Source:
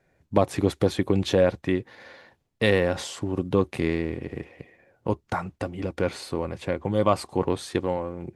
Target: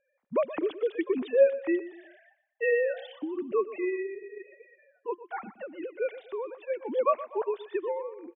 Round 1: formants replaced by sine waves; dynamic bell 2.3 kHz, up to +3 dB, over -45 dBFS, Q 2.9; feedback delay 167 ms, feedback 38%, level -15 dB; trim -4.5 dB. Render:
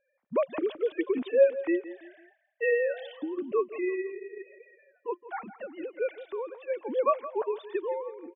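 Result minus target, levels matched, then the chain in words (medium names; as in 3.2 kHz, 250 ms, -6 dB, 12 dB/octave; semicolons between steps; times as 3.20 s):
echo 45 ms late
formants replaced by sine waves; dynamic bell 2.3 kHz, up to +3 dB, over -45 dBFS, Q 2.9; feedback delay 122 ms, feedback 38%, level -15 dB; trim -4.5 dB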